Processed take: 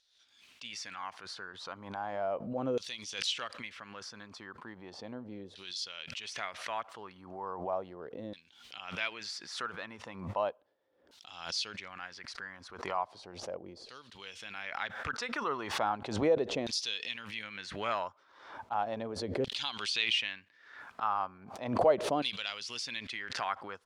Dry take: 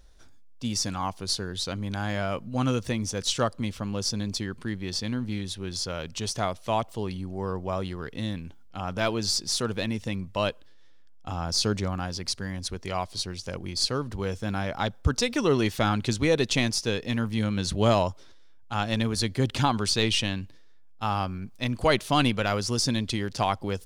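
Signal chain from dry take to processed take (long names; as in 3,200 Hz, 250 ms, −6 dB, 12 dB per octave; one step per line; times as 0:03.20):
loose part that buzzes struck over −19 dBFS, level −25 dBFS
auto-filter band-pass saw down 0.36 Hz 470–4,100 Hz
background raised ahead of every attack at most 70 dB per second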